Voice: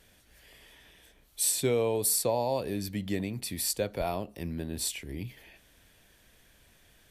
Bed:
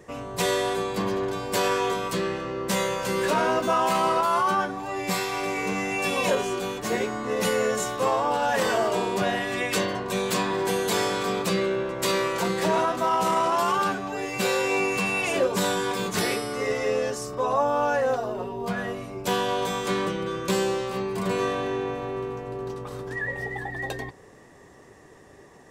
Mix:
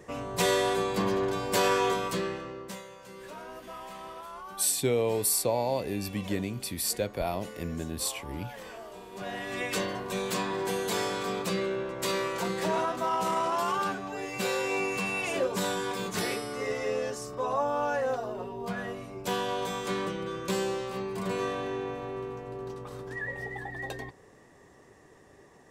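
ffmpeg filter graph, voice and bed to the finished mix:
ffmpeg -i stem1.wav -i stem2.wav -filter_complex "[0:a]adelay=3200,volume=0.5dB[link_01];[1:a]volume=14dB,afade=type=out:start_time=1.88:duration=0.94:silence=0.105925,afade=type=in:start_time=9.09:duration=0.52:silence=0.177828[link_02];[link_01][link_02]amix=inputs=2:normalize=0" out.wav

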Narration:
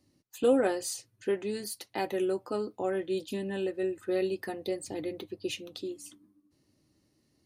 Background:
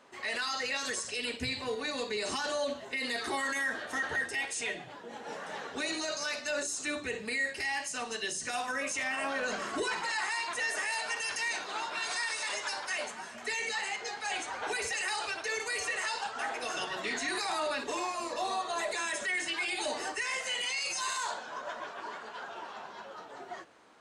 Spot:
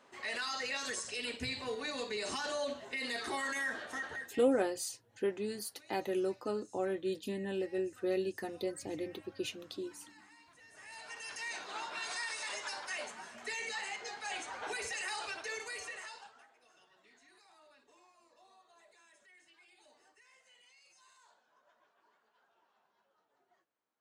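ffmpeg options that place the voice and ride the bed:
ffmpeg -i stem1.wav -i stem2.wav -filter_complex "[0:a]adelay=3950,volume=-4dB[link_01];[1:a]volume=18dB,afade=type=out:start_time=3.78:duration=0.7:silence=0.0668344,afade=type=in:start_time=10.7:duration=1.06:silence=0.0794328,afade=type=out:start_time=15.37:duration=1.1:silence=0.0530884[link_02];[link_01][link_02]amix=inputs=2:normalize=0" out.wav

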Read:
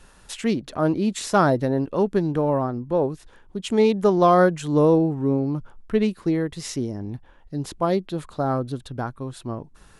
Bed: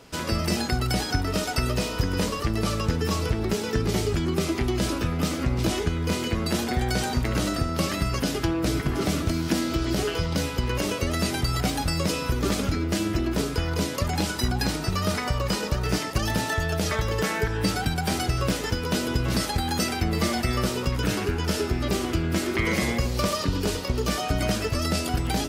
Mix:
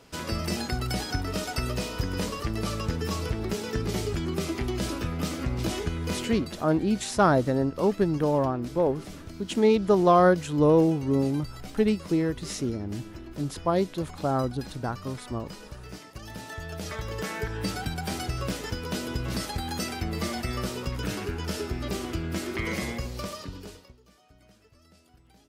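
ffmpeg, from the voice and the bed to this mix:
ffmpeg -i stem1.wav -i stem2.wav -filter_complex "[0:a]adelay=5850,volume=-2.5dB[link_01];[1:a]volume=6.5dB,afade=type=out:start_time=6.19:duration=0.37:silence=0.237137,afade=type=in:start_time=16.2:duration=1.29:silence=0.281838,afade=type=out:start_time=22.74:duration=1.24:silence=0.0446684[link_02];[link_01][link_02]amix=inputs=2:normalize=0" out.wav

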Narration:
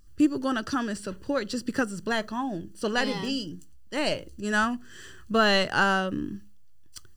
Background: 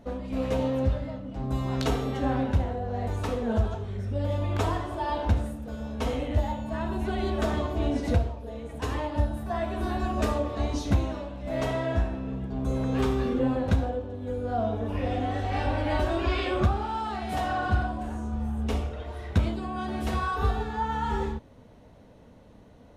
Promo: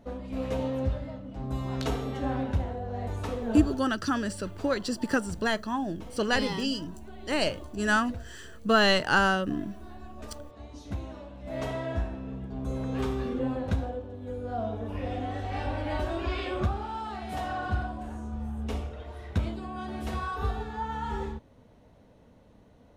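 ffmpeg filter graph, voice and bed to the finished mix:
ffmpeg -i stem1.wav -i stem2.wav -filter_complex "[0:a]adelay=3350,volume=0dB[link_01];[1:a]volume=9dB,afade=type=out:start_time=3.62:duration=0.29:silence=0.211349,afade=type=in:start_time=10.69:duration=0.92:silence=0.237137[link_02];[link_01][link_02]amix=inputs=2:normalize=0" out.wav

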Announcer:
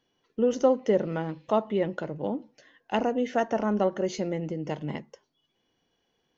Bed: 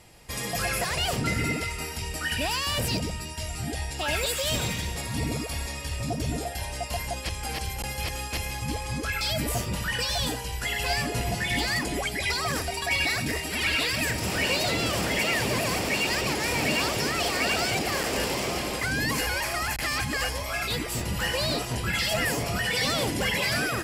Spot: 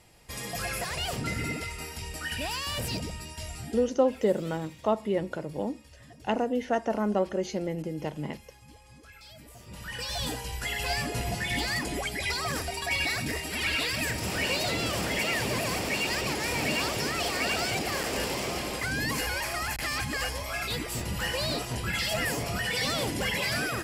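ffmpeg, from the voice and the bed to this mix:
ffmpeg -i stem1.wav -i stem2.wav -filter_complex "[0:a]adelay=3350,volume=-1.5dB[link_01];[1:a]volume=14dB,afade=type=out:start_time=3.51:duration=0.43:silence=0.141254,afade=type=in:start_time=9.59:duration=0.76:silence=0.112202[link_02];[link_01][link_02]amix=inputs=2:normalize=0" out.wav

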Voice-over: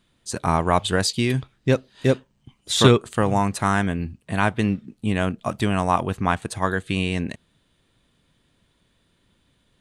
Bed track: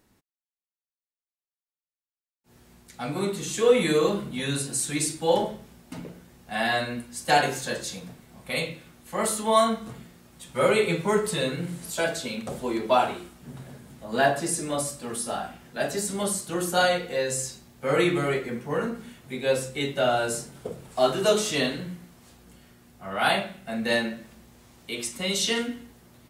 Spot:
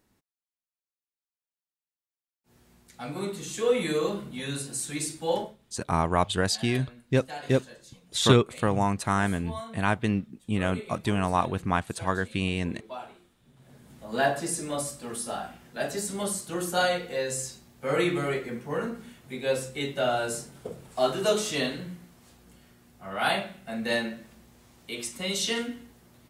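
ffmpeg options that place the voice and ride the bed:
ffmpeg -i stem1.wav -i stem2.wav -filter_complex "[0:a]adelay=5450,volume=-4.5dB[link_01];[1:a]volume=10.5dB,afade=type=out:start_time=5.35:duration=0.21:silence=0.211349,afade=type=in:start_time=13.57:duration=0.42:silence=0.16788[link_02];[link_01][link_02]amix=inputs=2:normalize=0" out.wav

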